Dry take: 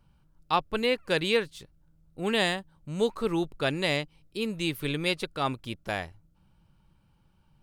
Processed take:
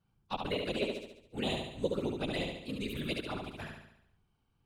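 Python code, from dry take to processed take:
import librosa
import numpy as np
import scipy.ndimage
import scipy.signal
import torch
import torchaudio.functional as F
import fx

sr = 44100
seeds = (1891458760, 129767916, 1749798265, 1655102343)

p1 = fx.env_flanger(x, sr, rest_ms=2.7, full_db=-22.5)
p2 = fx.stretch_vocoder(p1, sr, factor=0.61)
p3 = fx.whisperise(p2, sr, seeds[0])
p4 = p3 + fx.echo_feedback(p3, sr, ms=71, feedback_pct=52, wet_db=-4, dry=0)
y = p4 * librosa.db_to_amplitude(-6.0)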